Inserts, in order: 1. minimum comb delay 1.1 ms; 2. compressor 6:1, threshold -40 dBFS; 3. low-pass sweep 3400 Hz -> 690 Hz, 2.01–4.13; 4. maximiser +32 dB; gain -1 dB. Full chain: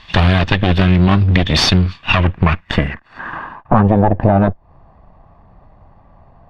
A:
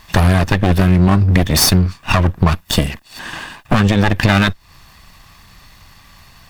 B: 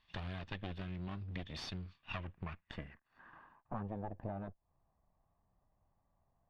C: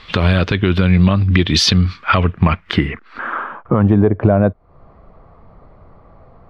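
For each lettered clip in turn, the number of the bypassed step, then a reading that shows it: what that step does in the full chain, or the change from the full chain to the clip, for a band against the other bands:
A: 3, 8 kHz band +10.5 dB; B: 4, crest factor change +5.5 dB; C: 1, 8 kHz band +4.0 dB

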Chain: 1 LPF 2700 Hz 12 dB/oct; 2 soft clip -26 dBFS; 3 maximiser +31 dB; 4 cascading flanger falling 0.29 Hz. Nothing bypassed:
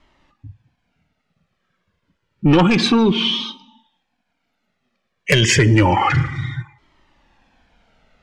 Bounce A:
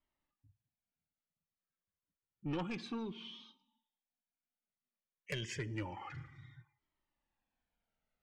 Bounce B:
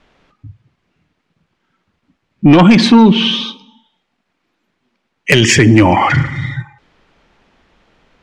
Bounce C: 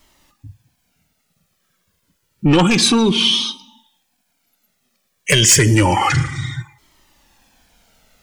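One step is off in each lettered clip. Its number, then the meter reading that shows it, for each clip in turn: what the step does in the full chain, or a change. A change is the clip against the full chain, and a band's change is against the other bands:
3, crest factor change +2.0 dB; 4, 250 Hz band +3.5 dB; 1, 8 kHz band +11.0 dB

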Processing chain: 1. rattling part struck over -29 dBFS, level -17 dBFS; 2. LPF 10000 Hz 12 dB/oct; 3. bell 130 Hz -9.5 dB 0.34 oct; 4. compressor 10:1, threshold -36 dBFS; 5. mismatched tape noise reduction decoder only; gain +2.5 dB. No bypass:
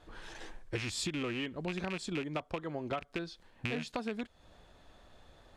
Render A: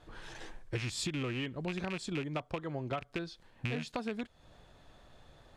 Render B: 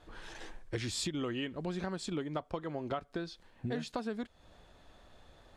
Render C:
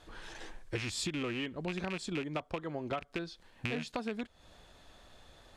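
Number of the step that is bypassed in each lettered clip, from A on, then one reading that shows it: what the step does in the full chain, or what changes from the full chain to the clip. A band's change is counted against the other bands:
3, 125 Hz band +4.0 dB; 1, 2 kHz band -5.0 dB; 5, momentary loudness spread change +2 LU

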